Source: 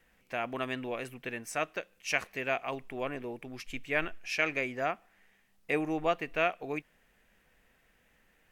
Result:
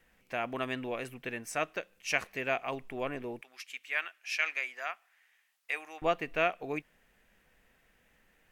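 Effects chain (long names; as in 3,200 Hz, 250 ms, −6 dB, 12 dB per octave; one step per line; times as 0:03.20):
0:03.41–0:06.02: high-pass filter 1,200 Hz 12 dB per octave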